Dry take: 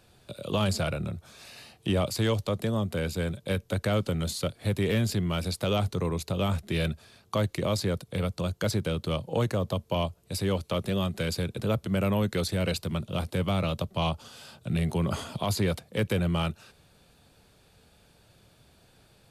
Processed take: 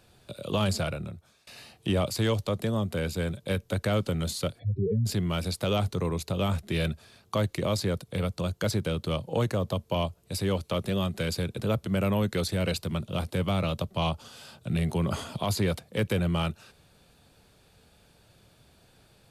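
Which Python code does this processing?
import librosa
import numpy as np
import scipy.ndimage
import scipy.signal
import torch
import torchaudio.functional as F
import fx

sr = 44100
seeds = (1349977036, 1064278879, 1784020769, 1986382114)

y = fx.spec_expand(x, sr, power=3.6, at=(4.58, 5.05), fade=0.02)
y = fx.edit(y, sr, fx.fade_out_to(start_s=0.76, length_s=0.71, floor_db=-23.5), tone=tone)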